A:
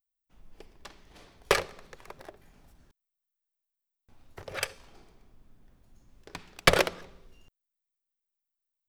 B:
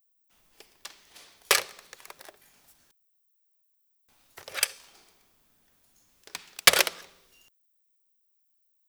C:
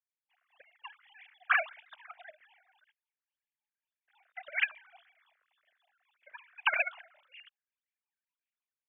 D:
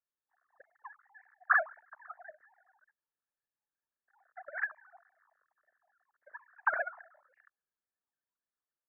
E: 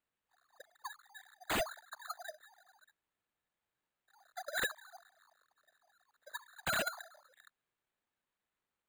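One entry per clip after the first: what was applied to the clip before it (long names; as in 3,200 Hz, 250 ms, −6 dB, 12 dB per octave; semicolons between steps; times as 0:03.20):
spectral tilt +4 dB per octave; level −1 dB
three sine waves on the formant tracks; automatic gain control gain up to 6.5 dB; all-pass phaser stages 6, 1.8 Hz, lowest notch 230–1,100 Hz; level −6 dB
Chebyshev low-pass with heavy ripple 1,800 Hz, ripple 3 dB; level +3 dB
bad sample-rate conversion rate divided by 8×, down none, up hold; wave folding −31.5 dBFS; level +3.5 dB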